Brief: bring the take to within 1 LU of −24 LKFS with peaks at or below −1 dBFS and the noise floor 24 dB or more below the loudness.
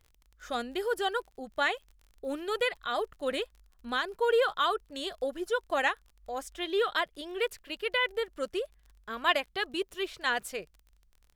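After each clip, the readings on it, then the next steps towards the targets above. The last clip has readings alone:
crackle rate 32 per second; integrated loudness −31.5 LKFS; sample peak −11.0 dBFS; target loudness −24.0 LKFS
→ click removal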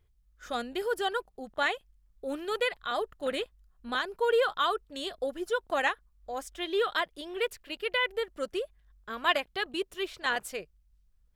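crackle rate 0.44 per second; integrated loudness −31.5 LKFS; sample peak −11.0 dBFS; target loudness −24.0 LKFS
→ level +7.5 dB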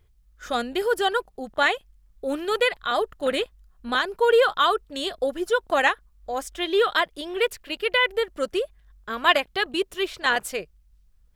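integrated loudness −24.0 LKFS; sample peak −3.5 dBFS; background noise floor −59 dBFS

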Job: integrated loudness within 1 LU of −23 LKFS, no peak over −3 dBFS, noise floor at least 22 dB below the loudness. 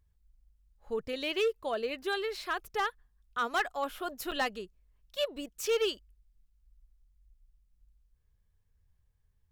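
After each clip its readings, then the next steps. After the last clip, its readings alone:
share of clipped samples 0.7%; peaks flattened at −23.5 dBFS; number of dropouts 1; longest dropout 6.7 ms; integrated loudness −33.5 LKFS; sample peak −23.5 dBFS; target loudness −23.0 LKFS
→ clipped peaks rebuilt −23.5 dBFS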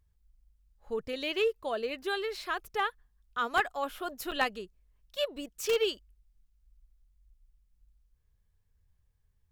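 share of clipped samples 0.0%; number of dropouts 1; longest dropout 6.7 ms
→ repair the gap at 0:04.31, 6.7 ms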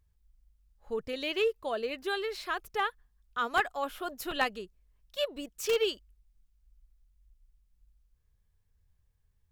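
number of dropouts 0; integrated loudness −33.0 LKFS; sample peak −14.5 dBFS; target loudness −23.0 LKFS
→ level +10 dB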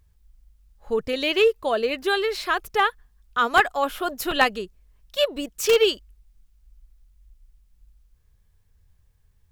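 integrated loudness −23.0 LKFS; sample peak −4.5 dBFS; background noise floor −62 dBFS

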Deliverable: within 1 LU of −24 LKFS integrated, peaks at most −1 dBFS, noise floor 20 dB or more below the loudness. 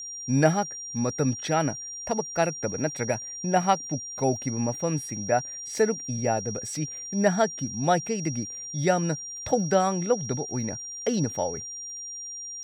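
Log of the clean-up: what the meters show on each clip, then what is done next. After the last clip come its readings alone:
crackle rate 57 per second; interfering tone 5,700 Hz; level of the tone −35 dBFS; integrated loudness −27.0 LKFS; sample peak −7.5 dBFS; target loudness −24.0 LKFS
→ click removal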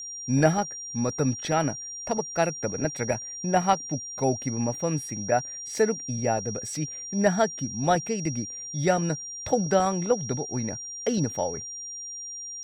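crackle rate 0.40 per second; interfering tone 5,700 Hz; level of the tone −35 dBFS
→ notch filter 5,700 Hz, Q 30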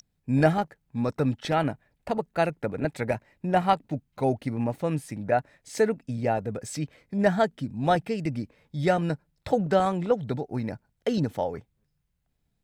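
interfering tone none found; integrated loudness −27.5 LKFS; sample peak −8.0 dBFS; target loudness −24.0 LKFS
→ level +3.5 dB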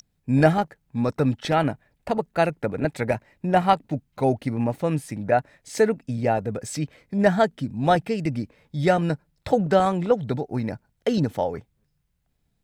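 integrated loudness −24.0 LKFS; sample peak −4.5 dBFS; background noise floor −72 dBFS

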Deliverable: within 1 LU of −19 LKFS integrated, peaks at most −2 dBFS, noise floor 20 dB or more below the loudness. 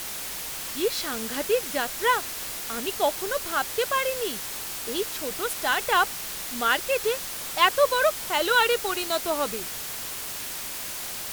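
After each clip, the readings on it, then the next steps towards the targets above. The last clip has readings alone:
background noise floor −34 dBFS; target noise floor −46 dBFS; integrated loudness −26.0 LKFS; sample peak −5.0 dBFS; target loudness −19.0 LKFS
→ broadband denoise 12 dB, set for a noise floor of −34 dBFS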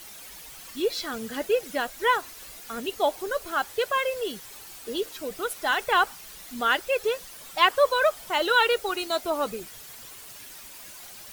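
background noise floor −44 dBFS; target noise floor −46 dBFS
→ broadband denoise 6 dB, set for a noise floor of −44 dBFS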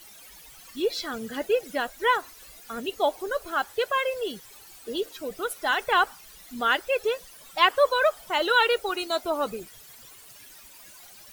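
background noise floor −49 dBFS; integrated loudness −26.0 LKFS; sample peak −5.0 dBFS; target loudness −19.0 LKFS
→ level +7 dB
brickwall limiter −2 dBFS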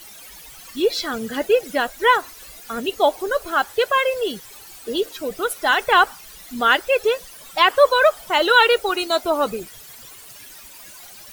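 integrated loudness −19.5 LKFS; sample peak −2.0 dBFS; background noise floor −42 dBFS

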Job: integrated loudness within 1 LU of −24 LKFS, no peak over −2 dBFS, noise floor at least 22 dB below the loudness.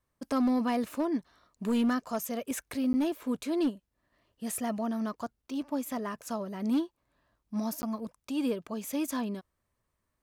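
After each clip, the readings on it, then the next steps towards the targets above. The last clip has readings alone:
share of clipped samples 0.9%; peaks flattened at −22.5 dBFS; number of dropouts 2; longest dropout 10 ms; integrated loudness −32.5 LKFS; sample peak −22.5 dBFS; target loudness −24.0 LKFS
→ clipped peaks rebuilt −22.5 dBFS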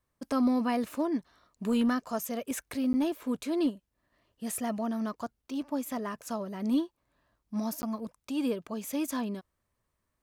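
share of clipped samples 0.0%; number of dropouts 2; longest dropout 10 ms
→ repair the gap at 0:02.93/0:07.82, 10 ms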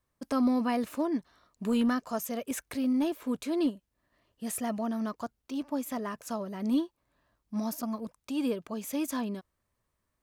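number of dropouts 0; integrated loudness −32.0 LKFS; sample peak −17.0 dBFS; target loudness −24.0 LKFS
→ level +8 dB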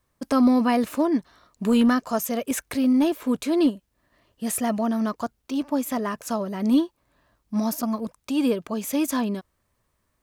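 integrated loudness −24.0 LKFS; sample peak −9.0 dBFS; background noise floor −73 dBFS

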